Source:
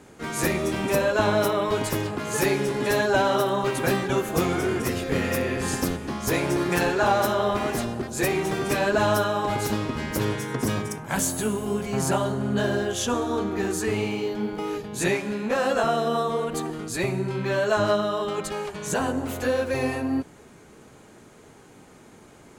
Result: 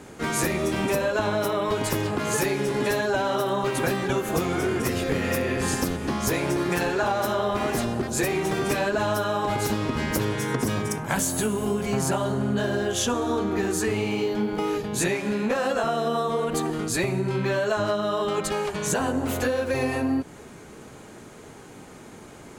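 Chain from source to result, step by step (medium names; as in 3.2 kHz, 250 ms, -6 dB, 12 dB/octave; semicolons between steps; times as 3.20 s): compression, threshold -27 dBFS, peak gain reduction 10.5 dB; trim +5.5 dB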